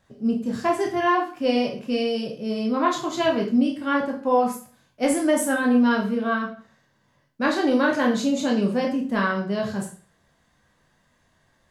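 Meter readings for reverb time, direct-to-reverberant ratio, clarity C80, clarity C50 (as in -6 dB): 0.40 s, -0.5 dB, 13.5 dB, 8.0 dB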